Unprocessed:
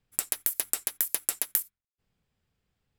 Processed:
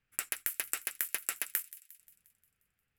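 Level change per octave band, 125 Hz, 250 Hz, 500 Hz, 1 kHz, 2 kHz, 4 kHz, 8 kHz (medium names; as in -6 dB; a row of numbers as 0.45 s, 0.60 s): no reading, -7.0 dB, -7.0 dB, -2.0 dB, +3.0 dB, -4.5 dB, -7.0 dB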